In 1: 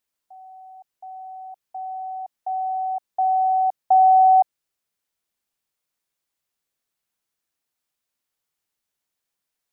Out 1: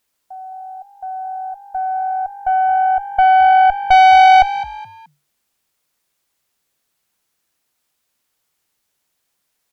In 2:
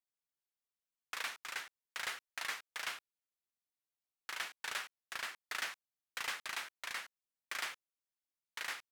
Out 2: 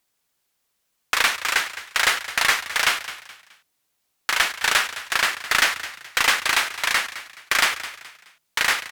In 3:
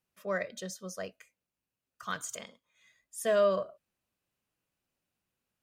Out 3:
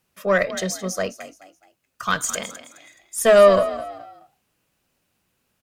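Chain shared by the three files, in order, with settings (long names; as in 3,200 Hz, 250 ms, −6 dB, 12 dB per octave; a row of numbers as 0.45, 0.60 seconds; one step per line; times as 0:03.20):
tube saturation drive 19 dB, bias 0.5
echo with shifted repeats 212 ms, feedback 34%, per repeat +48 Hz, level −14 dB
normalise the peak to −3 dBFS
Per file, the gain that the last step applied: +13.0, +23.0, +16.5 decibels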